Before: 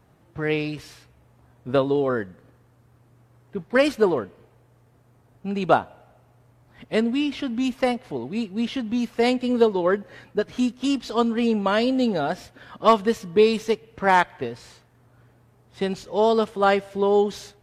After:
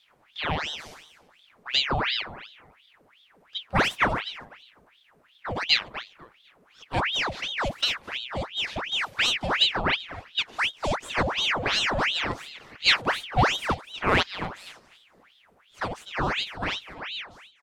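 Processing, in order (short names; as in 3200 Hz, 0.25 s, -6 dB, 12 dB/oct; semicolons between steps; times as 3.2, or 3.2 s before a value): ending faded out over 2.07 s; feedback echo 0.249 s, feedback 24%, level -15 dB; ring modulator with a swept carrier 1900 Hz, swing 85%, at 2.8 Hz; gain -1.5 dB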